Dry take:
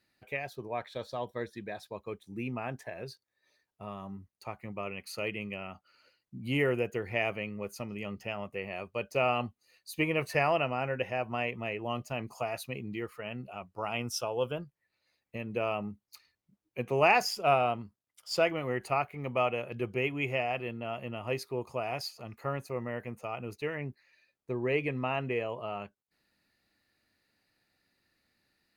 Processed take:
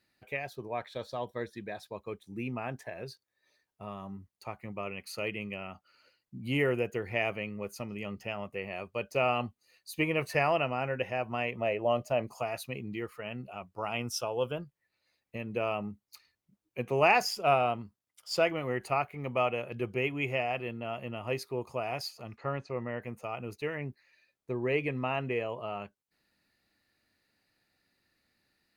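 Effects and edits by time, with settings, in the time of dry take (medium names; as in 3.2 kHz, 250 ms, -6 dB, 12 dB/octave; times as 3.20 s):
11.55–12.29 s: peaking EQ 590 Hz +12 dB 0.6 oct
22.37–23.02 s: low-pass 5.3 kHz 24 dB/octave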